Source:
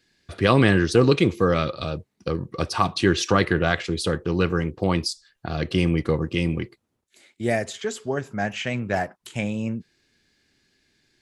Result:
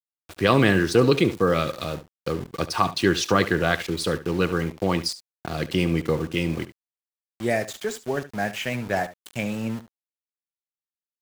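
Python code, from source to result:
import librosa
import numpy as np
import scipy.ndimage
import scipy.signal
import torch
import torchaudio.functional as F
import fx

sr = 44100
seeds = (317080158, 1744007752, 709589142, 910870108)

y = fx.highpass(x, sr, hz=130.0, slope=6)
y = np.where(np.abs(y) >= 10.0 ** (-35.0 / 20.0), y, 0.0)
y = y + 10.0 ** (-15.0 / 20.0) * np.pad(y, (int(72 * sr / 1000.0), 0))[:len(y)]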